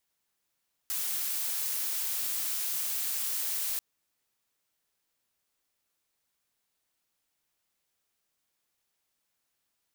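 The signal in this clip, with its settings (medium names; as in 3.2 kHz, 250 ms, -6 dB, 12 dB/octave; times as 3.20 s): noise blue, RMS -32 dBFS 2.89 s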